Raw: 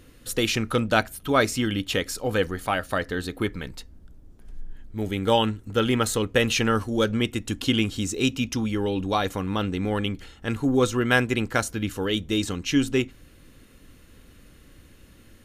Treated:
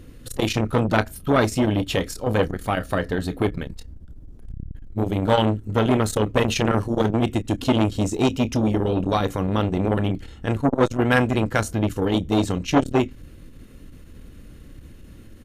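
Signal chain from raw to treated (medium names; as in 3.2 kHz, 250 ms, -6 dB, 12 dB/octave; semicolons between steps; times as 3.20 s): bass shelf 490 Hz +10 dB; doubling 28 ms -13 dB; transformer saturation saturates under 920 Hz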